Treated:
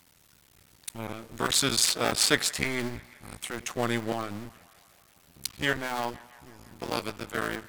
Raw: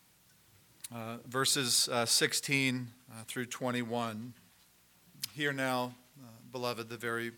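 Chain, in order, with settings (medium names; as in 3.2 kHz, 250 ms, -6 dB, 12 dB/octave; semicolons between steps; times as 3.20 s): cycle switcher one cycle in 2, muted; feedback echo behind a band-pass 159 ms, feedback 69%, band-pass 1.5 kHz, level -20 dB; speed mistake 25 fps video run at 24 fps; trim +7 dB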